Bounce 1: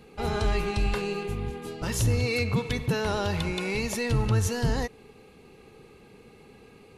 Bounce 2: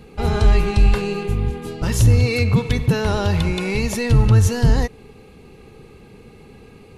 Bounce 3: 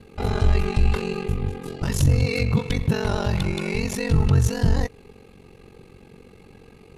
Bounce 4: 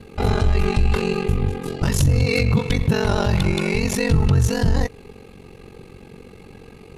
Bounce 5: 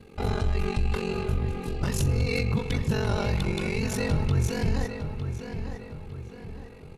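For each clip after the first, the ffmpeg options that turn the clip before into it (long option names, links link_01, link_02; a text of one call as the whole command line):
ffmpeg -i in.wav -af "lowshelf=frequency=170:gain=9,volume=5dB" out.wav
ffmpeg -i in.wav -af "aeval=exprs='val(0)*sin(2*PI*23*n/s)':channel_layout=same,acontrast=29,volume=-6dB" out.wav
ffmpeg -i in.wav -af "alimiter=limit=-14.5dB:level=0:latency=1:release=46,volume=5.5dB" out.wav
ffmpeg -i in.wav -filter_complex "[0:a]asplit=2[link_01][link_02];[link_02]adelay=906,lowpass=frequency=3600:poles=1,volume=-8dB,asplit=2[link_03][link_04];[link_04]adelay=906,lowpass=frequency=3600:poles=1,volume=0.44,asplit=2[link_05][link_06];[link_06]adelay=906,lowpass=frequency=3600:poles=1,volume=0.44,asplit=2[link_07][link_08];[link_08]adelay=906,lowpass=frequency=3600:poles=1,volume=0.44,asplit=2[link_09][link_10];[link_10]adelay=906,lowpass=frequency=3600:poles=1,volume=0.44[link_11];[link_01][link_03][link_05][link_07][link_09][link_11]amix=inputs=6:normalize=0,volume=-8dB" out.wav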